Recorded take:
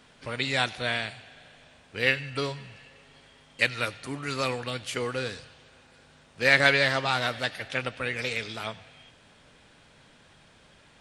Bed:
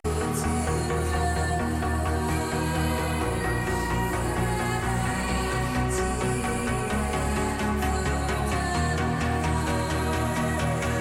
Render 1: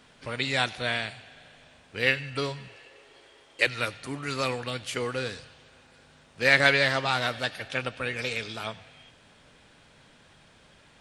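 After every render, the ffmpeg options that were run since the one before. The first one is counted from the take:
ffmpeg -i in.wav -filter_complex "[0:a]asettb=1/sr,asplit=3[link_01][link_02][link_03];[link_01]atrim=end=2.684[link_04];[link_02]atrim=start=2.68:end=3.67,asetpts=PTS-STARTPTS,afade=type=in:duration=0.004:curve=qsin,afade=type=out:start_time=0.986:duration=0.004:curve=qsin,lowshelf=frequency=270:width_type=q:width=3:gain=-8.5[link_05];[link_03]atrim=start=3.666[link_06];[link_04][link_05]acrossfade=duration=0.004:curve1=hsin:curve2=qsin[link_07];[link_07][link_06]acrossfade=duration=0.004:curve1=qsin:curve2=hsin,asettb=1/sr,asplit=3[link_08][link_09][link_10];[link_08]atrim=end=7.334[link_11];[link_09]atrim=start=7.33:end=8.71,asetpts=PTS-STARTPTS,afade=type=in:duration=0.004:curve=qsin,afade=type=out:start_time=1.376:duration=0.004:curve=qsin,bandreject=frequency=2000:width=12[link_12];[link_10]atrim=start=8.706[link_13];[link_11][link_12]acrossfade=duration=0.004:curve1=hsin:curve2=qsin[link_14];[link_14][link_13]acrossfade=duration=0.004:curve1=qsin:curve2=hsin" out.wav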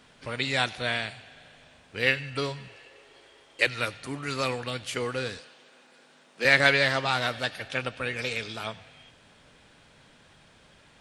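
ffmpeg -i in.wav -filter_complex "[0:a]asettb=1/sr,asplit=3[link_01][link_02][link_03];[link_01]atrim=end=5.394[link_04];[link_02]atrim=start=5.39:end=6.45,asetpts=PTS-STARTPTS,afade=type=in:duration=0.004:curve=qsin,afade=type=out:start_time=1.056:duration=0.004:curve=qsin,highpass=frequency=210:width=0.5412,highpass=frequency=210:width=1.3066[link_05];[link_03]atrim=start=6.446[link_06];[link_04][link_05]acrossfade=duration=0.004:curve1=hsin:curve2=qsin[link_07];[link_07][link_06]acrossfade=duration=0.004:curve1=qsin:curve2=hsin" out.wav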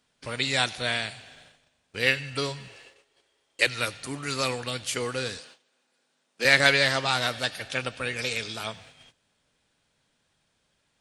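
ffmpeg -i in.wav -af "bass=frequency=250:gain=0,treble=frequency=4000:gain=8,agate=range=-17dB:threshold=-50dB:ratio=16:detection=peak" out.wav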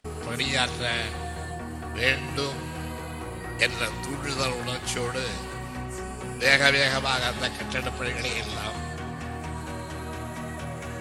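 ffmpeg -i in.wav -i bed.wav -filter_complex "[1:a]volume=-9dB[link_01];[0:a][link_01]amix=inputs=2:normalize=0" out.wav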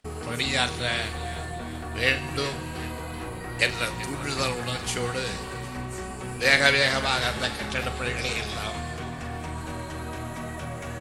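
ffmpeg -i in.wav -filter_complex "[0:a]asplit=2[link_01][link_02];[link_02]adelay=41,volume=-12.5dB[link_03];[link_01][link_03]amix=inputs=2:normalize=0,asplit=6[link_04][link_05][link_06][link_07][link_08][link_09];[link_05]adelay=378,afreqshift=-48,volume=-16.5dB[link_10];[link_06]adelay=756,afreqshift=-96,volume=-21.4dB[link_11];[link_07]adelay=1134,afreqshift=-144,volume=-26.3dB[link_12];[link_08]adelay=1512,afreqshift=-192,volume=-31.1dB[link_13];[link_09]adelay=1890,afreqshift=-240,volume=-36dB[link_14];[link_04][link_10][link_11][link_12][link_13][link_14]amix=inputs=6:normalize=0" out.wav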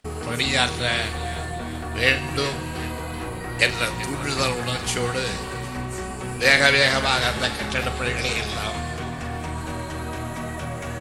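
ffmpeg -i in.wav -af "volume=4dB,alimiter=limit=-1dB:level=0:latency=1" out.wav

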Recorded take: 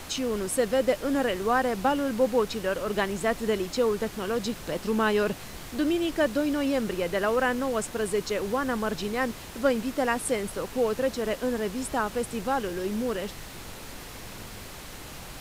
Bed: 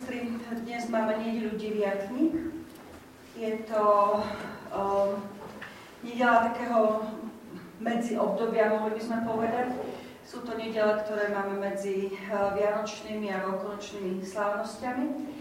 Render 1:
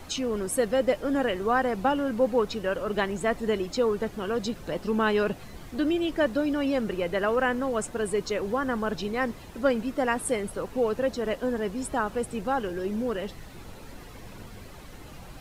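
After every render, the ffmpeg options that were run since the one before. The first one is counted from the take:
ffmpeg -i in.wav -af "afftdn=noise_reduction=10:noise_floor=-42" out.wav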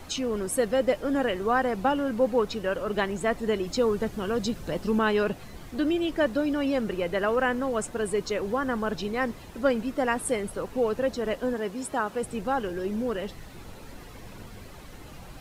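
ffmpeg -i in.wav -filter_complex "[0:a]asettb=1/sr,asplit=3[link_01][link_02][link_03];[link_01]atrim=end=3.664[link_04];[link_02]atrim=start=3.66:end=4.99,asetpts=PTS-STARTPTS,afade=type=in:duration=0.004:curve=qsin,afade=type=out:start_time=1.326:duration=0.004:curve=qsin,bass=frequency=250:gain=4,treble=frequency=4000:gain=3[link_05];[link_03]atrim=start=4.986[link_06];[link_04][link_05]acrossfade=duration=0.004:curve1=hsin:curve2=qsin[link_07];[link_07][link_06]acrossfade=duration=0.004:curve1=qsin:curve2=hsin,asettb=1/sr,asplit=3[link_08][link_09][link_10];[link_08]atrim=end=11.534[link_11];[link_09]atrim=start=11.53:end=12.23,asetpts=PTS-STARTPTS,afade=type=in:duration=0.004:curve=qsin,afade=type=out:start_time=0.696:duration=0.004:curve=qsin,highpass=frequency=200:poles=1[link_12];[link_10]atrim=start=12.226[link_13];[link_11][link_12]acrossfade=duration=0.004:curve1=hsin:curve2=qsin[link_14];[link_14][link_13]acrossfade=duration=0.004:curve1=qsin:curve2=hsin" out.wav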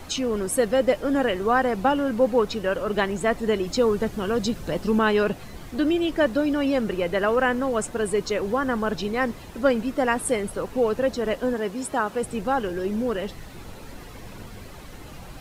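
ffmpeg -i in.wav -af "volume=3.5dB" out.wav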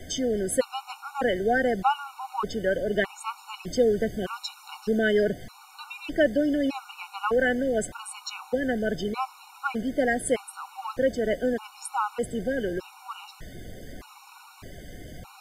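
ffmpeg -i in.wav -filter_complex "[0:a]acrossover=split=290|6000[link_01][link_02][link_03];[link_01]asoftclip=type=tanh:threshold=-28.5dB[link_04];[link_04][link_02][link_03]amix=inputs=3:normalize=0,afftfilt=real='re*gt(sin(2*PI*0.82*pts/sr)*(1-2*mod(floor(b*sr/1024/740),2)),0)':imag='im*gt(sin(2*PI*0.82*pts/sr)*(1-2*mod(floor(b*sr/1024/740),2)),0)':win_size=1024:overlap=0.75" out.wav

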